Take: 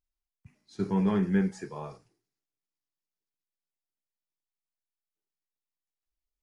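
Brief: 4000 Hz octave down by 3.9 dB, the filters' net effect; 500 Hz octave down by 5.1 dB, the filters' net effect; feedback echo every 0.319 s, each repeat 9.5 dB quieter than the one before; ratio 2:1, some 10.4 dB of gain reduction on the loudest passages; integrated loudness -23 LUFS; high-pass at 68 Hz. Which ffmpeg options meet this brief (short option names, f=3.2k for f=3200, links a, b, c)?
-af "highpass=68,equalizer=f=500:t=o:g=-7,equalizer=f=4k:t=o:g=-5,acompressor=threshold=-43dB:ratio=2,aecho=1:1:319|638|957|1276:0.335|0.111|0.0365|0.012,volume=17.5dB"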